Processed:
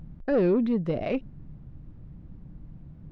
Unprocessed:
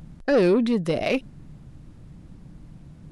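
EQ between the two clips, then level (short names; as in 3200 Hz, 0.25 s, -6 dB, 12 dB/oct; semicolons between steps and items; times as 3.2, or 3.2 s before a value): tape spacing loss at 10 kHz 31 dB; low shelf 150 Hz +5.5 dB; -3.5 dB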